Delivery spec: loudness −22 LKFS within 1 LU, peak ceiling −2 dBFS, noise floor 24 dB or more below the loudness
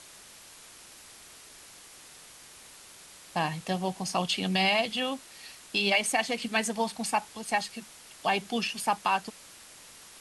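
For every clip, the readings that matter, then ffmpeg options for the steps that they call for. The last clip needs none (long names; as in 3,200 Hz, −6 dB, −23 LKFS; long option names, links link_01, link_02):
background noise floor −51 dBFS; target noise floor −53 dBFS; integrated loudness −29.0 LKFS; sample peak −12.5 dBFS; target loudness −22.0 LKFS
→ -af "afftdn=noise_reduction=6:noise_floor=-51"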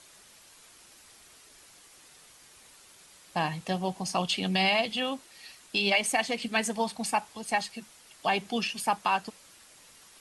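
background noise floor −56 dBFS; integrated loudness −29.0 LKFS; sample peak −13.0 dBFS; target loudness −22.0 LKFS
→ -af "volume=7dB"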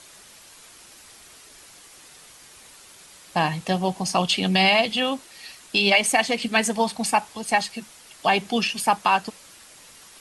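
integrated loudness −22.0 LKFS; sample peak −6.0 dBFS; background noise floor −49 dBFS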